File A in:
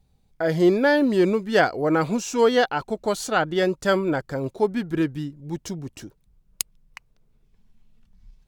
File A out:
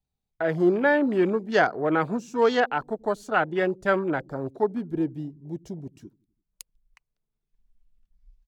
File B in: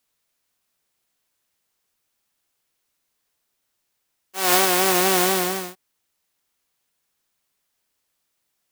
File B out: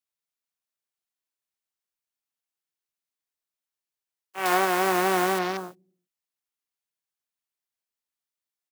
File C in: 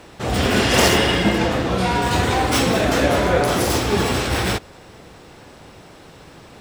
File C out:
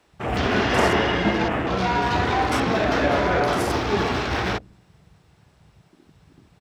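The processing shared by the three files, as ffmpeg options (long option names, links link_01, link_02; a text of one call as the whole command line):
ffmpeg -i in.wav -filter_complex "[0:a]afwtdn=0.0251,lowshelf=frequency=370:gain=-5.5,bandreject=frequency=520:width=12,acrossover=split=340|1400|1900[link_01][link_02][link_03][link_04];[link_01]aecho=1:1:85|170|255|340:0.1|0.055|0.0303|0.0166[link_05];[link_04]acompressor=threshold=-33dB:ratio=6[link_06];[link_05][link_02][link_03][link_06]amix=inputs=4:normalize=0" out.wav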